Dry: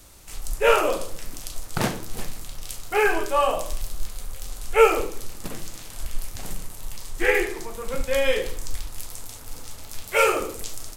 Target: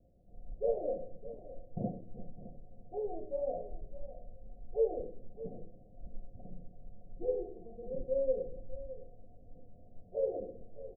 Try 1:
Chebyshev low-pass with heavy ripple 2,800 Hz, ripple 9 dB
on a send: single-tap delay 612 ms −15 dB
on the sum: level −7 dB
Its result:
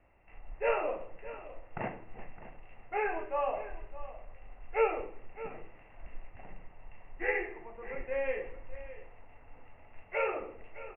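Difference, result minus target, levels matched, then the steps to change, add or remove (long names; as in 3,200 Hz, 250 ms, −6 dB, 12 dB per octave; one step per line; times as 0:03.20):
1,000 Hz band +10.0 dB
change: Chebyshev low-pass with heavy ripple 740 Hz, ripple 9 dB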